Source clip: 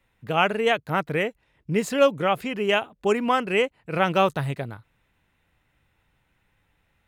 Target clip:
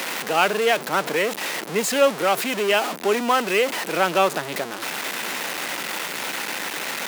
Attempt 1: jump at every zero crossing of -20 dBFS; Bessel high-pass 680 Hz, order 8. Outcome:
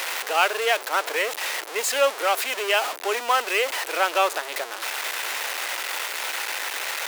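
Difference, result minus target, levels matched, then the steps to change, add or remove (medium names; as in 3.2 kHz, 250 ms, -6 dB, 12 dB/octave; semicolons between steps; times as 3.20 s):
250 Hz band -13.0 dB
change: Bessel high-pass 330 Hz, order 8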